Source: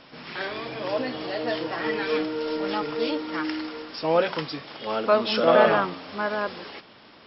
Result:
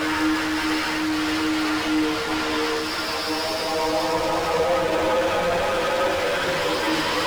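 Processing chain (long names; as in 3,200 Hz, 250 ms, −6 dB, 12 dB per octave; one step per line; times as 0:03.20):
extreme stretch with random phases 7.2×, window 0.50 s, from 0:03.44
mid-hump overdrive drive 40 dB, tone 3,100 Hz, clips at −15 dBFS
multi-voice chorus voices 4, 0.52 Hz, delay 11 ms, depth 1.7 ms
level +1 dB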